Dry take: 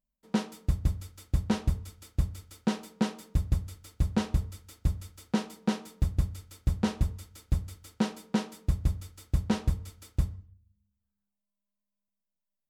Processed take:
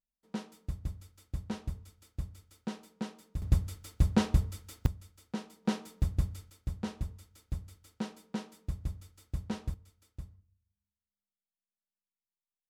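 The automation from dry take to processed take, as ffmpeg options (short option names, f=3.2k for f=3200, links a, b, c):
-af "asetnsamples=n=441:p=0,asendcmd='3.42 volume volume 1.5dB;4.86 volume volume -9.5dB;5.65 volume volume -2.5dB;6.5 volume volume -9dB;9.74 volume volume -16.5dB',volume=-10dB"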